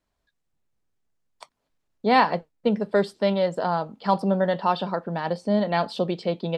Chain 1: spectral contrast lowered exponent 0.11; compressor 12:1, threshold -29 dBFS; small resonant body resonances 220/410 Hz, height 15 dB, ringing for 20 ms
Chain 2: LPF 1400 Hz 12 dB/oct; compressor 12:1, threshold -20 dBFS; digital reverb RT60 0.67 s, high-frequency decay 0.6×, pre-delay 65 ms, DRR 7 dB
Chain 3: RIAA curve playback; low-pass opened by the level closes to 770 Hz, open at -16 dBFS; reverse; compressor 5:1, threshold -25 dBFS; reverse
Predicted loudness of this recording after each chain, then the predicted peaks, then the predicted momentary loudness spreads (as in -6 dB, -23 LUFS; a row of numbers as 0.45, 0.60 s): -29.0, -27.0, -29.5 LUFS; -10.5, -11.0, -15.5 dBFS; 5, 4, 3 LU